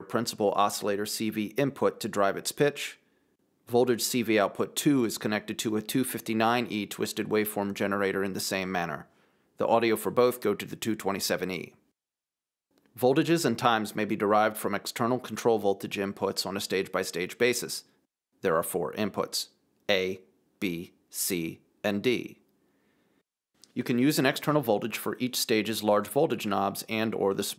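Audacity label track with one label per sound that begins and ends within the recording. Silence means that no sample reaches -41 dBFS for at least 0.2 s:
3.690000	9.020000	sound
9.590000	11.680000	sound
12.970000	17.800000	sound
18.430000	19.450000	sound
19.890000	20.170000	sound
20.620000	20.860000	sound
21.130000	21.540000	sound
21.840000	22.330000	sound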